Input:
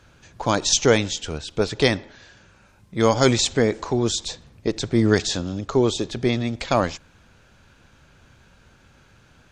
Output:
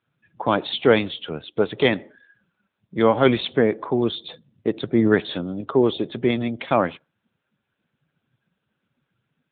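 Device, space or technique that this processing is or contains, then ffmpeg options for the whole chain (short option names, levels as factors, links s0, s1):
mobile call with aggressive noise cancelling: -af "highpass=150,afftdn=nr=22:nf=-42,volume=1.19" -ar 8000 -c:a libopencore_amrnb -b:a 10200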